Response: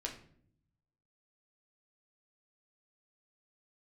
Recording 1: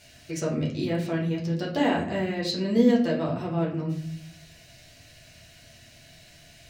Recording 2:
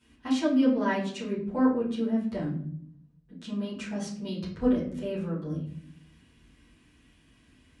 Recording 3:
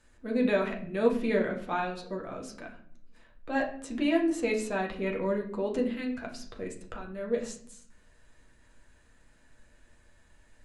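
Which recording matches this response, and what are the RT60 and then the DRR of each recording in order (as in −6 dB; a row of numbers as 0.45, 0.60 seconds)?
3; 0.60, 0.60, 0.60 seconds; −4.5, −10.5, 0.0 decibels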